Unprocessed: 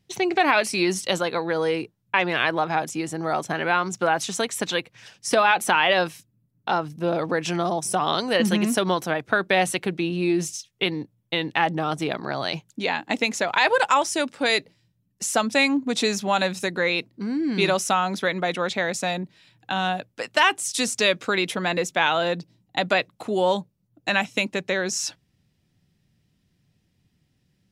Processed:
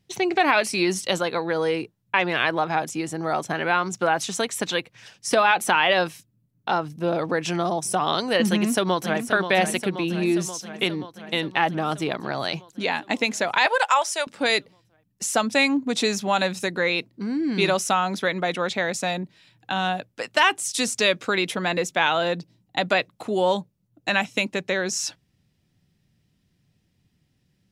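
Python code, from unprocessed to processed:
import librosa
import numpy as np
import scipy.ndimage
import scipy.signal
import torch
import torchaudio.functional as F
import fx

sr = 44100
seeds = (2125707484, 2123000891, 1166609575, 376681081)

y = fx.echo_throw(x, sr, start_s=8.5, length_s=0.76, ms=530, feedback_pct=70, wet_db=-8.5)
y = fx.highpass(y, sr, hz=520.0, slope=24, at=(13.66, 14.27))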